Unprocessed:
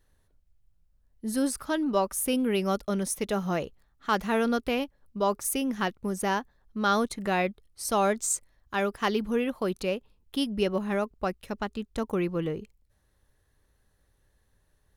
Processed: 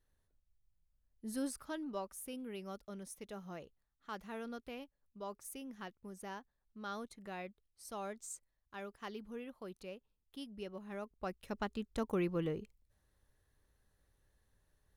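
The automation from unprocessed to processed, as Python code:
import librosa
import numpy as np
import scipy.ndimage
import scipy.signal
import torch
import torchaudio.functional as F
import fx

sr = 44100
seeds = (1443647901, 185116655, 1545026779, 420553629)

y = fx.gain(x, sr, db=fx.line((1.44, -11.5), (2.31, -19.0), (10.81, -19.0), (11.58, -6.5)))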